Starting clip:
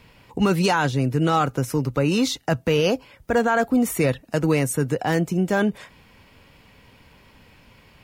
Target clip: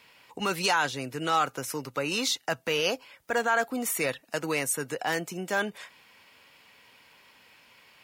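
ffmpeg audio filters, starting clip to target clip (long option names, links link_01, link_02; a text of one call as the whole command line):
ffmpeg -i in.wav -af "highpass=frequency=1200:poles=1" out.wav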